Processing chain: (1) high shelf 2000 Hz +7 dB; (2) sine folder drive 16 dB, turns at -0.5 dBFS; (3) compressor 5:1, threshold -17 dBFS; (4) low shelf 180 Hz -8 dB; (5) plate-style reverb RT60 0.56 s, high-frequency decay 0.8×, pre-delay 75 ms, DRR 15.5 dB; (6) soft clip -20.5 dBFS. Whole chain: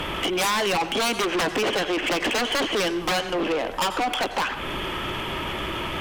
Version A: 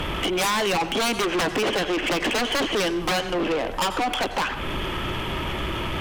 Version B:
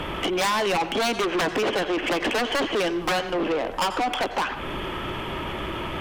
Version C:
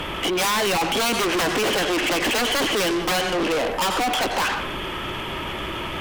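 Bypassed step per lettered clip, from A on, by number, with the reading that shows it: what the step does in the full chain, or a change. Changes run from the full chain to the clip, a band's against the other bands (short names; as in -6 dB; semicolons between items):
4, 125 Hz band +4.0 dB; 1, 8 kHz band -4.0 dB; 3, mean gain reduction 7.5 dB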